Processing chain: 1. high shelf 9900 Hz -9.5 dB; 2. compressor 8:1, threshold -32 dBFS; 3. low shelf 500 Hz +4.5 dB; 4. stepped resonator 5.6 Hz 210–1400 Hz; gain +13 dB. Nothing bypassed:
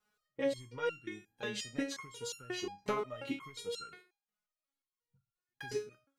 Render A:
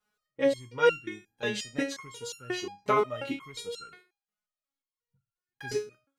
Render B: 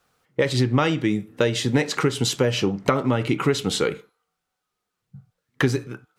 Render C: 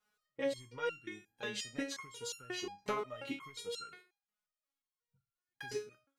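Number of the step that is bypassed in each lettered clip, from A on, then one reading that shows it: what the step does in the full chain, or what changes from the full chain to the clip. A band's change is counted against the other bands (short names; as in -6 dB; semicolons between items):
2, mean gain reduction 4.5 dB; 4, 125 Hz band +13.0 dB; 3, 125 Hz band -3.5 dB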